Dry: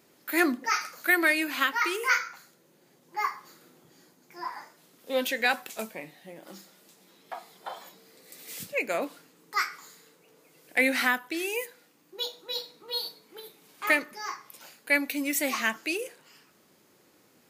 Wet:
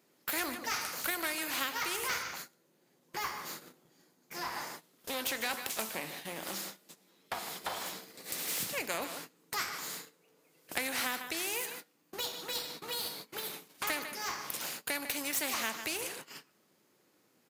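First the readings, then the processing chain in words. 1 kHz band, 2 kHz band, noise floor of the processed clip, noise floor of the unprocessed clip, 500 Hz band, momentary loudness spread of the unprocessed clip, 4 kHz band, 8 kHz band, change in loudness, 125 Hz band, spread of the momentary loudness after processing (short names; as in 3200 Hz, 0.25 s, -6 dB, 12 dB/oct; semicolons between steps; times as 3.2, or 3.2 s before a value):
-6.5 dB, -10.0 dB, -71 dBFS, -63 dBFS, -9.0 dB, 20 LU, -2.0 dB, +2.0 dB, -7.5 dB, +2.5 dB, 12 LU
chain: half-wave gain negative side -3 dB; compressor 2:1, threshold -42 dBFS, peak gain reduction 13 dB; dynamic EQ 890 Hz, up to +5 dB, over -51 dBFS, Q 1.2; HPF 100 Hz 12 dB/oct; echo 0.15 s -17.5 dB; gate -55 dBFS, range -24 dB; spectral compressor 2:1; gain +7 dB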